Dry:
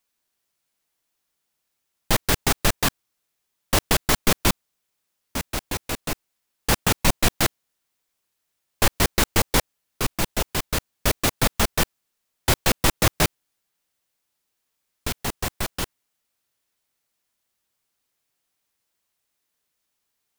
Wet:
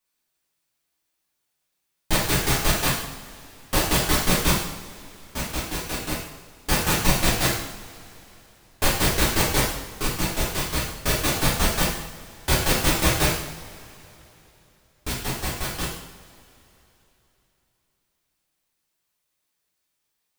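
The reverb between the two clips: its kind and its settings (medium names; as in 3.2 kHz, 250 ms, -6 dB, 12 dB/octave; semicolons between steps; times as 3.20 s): two-slope reverb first 0.73 s, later 3.5 s, from -20 dB, DRR -6.5 dB; trim -7 dB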